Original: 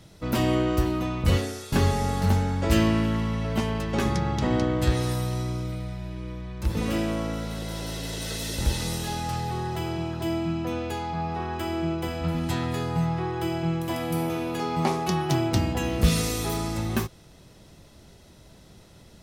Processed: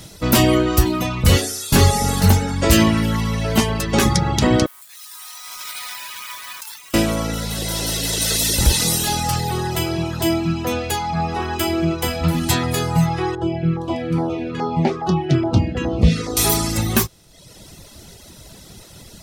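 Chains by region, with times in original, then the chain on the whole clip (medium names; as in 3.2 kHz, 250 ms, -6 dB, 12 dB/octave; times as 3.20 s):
4.66–6.94 s: steep high-pass 900 Hz 48 dB/octave + compressor with a negative ratio -50 dBFS + companded quantiser 4-bit
13.35–16.37 s: high-pass 57 Hz + LFO notch saw down 2.4 Hz 660–2900 Hz + tape spacing loss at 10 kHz 33 dB
whole clip: reverb removal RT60 0.9 s; treble shelf 4.1 kHz +11 dB; loudness maximiser +11.5 dB; trim -1.5 dB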